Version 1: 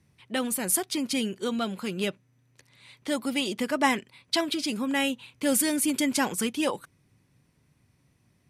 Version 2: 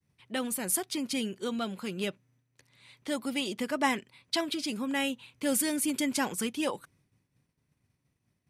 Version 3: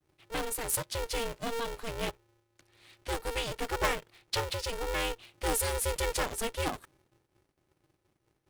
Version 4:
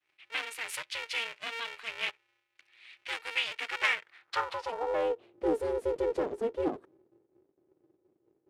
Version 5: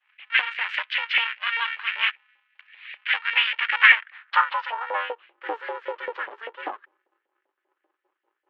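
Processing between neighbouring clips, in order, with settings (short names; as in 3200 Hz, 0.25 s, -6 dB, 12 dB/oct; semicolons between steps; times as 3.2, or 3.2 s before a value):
expander -59 dBFS; gain -4 dB
low shelf 79 Hz +11.5 dB; polarity switched at an audio rate 230 Hz; gain -2 dB
band-pass sweep 2400 Hz -> 380 Hz, 3.87–5.33; gain +9 dB
LFO high-pass saw up 5.1 Hz 670–2000 Hz; speaker cabinet 340–3200 Hz, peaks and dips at 450 Hz -5 dB, 690 Hz -10 dB, 1700 Hz +5 dB, 3000 Hz +5 dB; gain +7 dB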